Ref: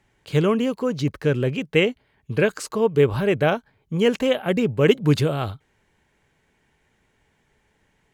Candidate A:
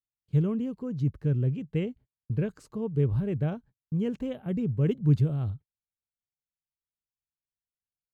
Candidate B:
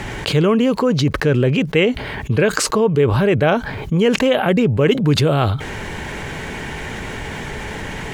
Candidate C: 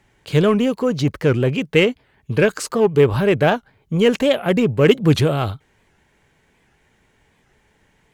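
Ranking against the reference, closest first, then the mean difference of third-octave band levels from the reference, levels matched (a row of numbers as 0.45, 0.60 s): C, B, A; 1.5, 4.5, 8.5 dB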